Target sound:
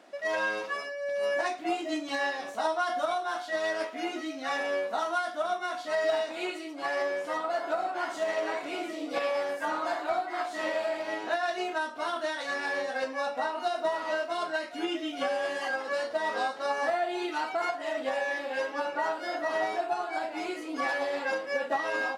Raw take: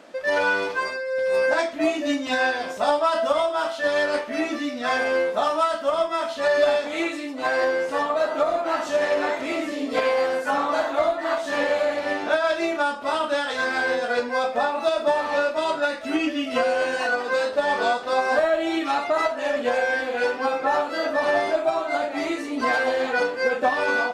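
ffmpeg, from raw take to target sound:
-af "asetrate=48000,aresample=44100,highpass=130,volume=-8dB"

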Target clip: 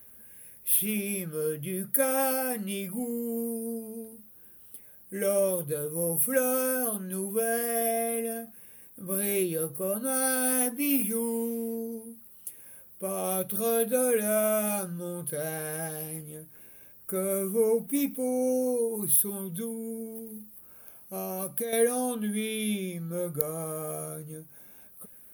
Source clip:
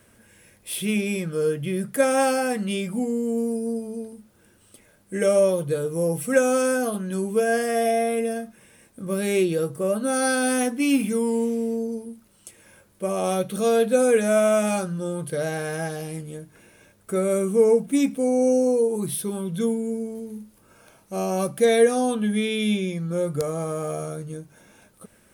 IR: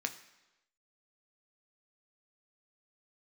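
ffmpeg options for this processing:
-filter_complex "[0:a]asettb=1/sr,asplit=3[a][b][c];[a]atrim=end=19.434[d];[b]atrim=start=19.43:end=21.73,asetpts=PTS-STARTPTS,afade=t=in:d=0.004:c=qsin,afade=t=out:st=2.296:d=0.004:c=qsin,acompressor=threshold=-24dB:ratio=6[e];[c]atrim=start=21.726[f];[d][e]acrossfade=d=0.004:c1=hsin:c2=qsin[g];[g][f]acrossfade=d=0.004:c1=qsin:c2=hsin,aexciter=amount=15.2:drive=5.6:freq=11k,volume=-7.5dB"

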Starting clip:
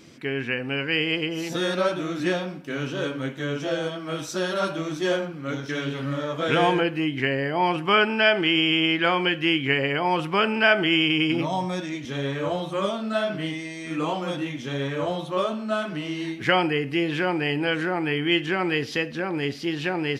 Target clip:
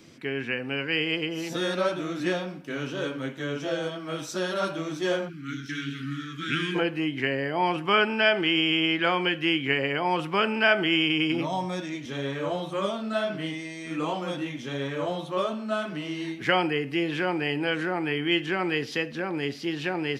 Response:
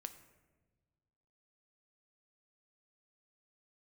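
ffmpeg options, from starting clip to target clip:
-filter_complex "[0:a]asplit=3[a][b][c];[a]afade=t=out:st=5.28:d=0.02[d];[b]asuperstop=centerf=670:order=8:qfactor=0.66,afade=t=in:st=5.28:d=0.02,afade=t=out:st=6.74:d=0.02[e];[c]afade=t=in:st=6.74:d=0.02[f];[d][e][f]amix=inputs=3:normalize=0,acrossover=split=120|1000|4100[g][h][i][j];[g]acompressor=threshold=-53dB:ratio=6[k];[k][h][i][j]amix=inputs=4:normalize=0,volume=-2.5dB"

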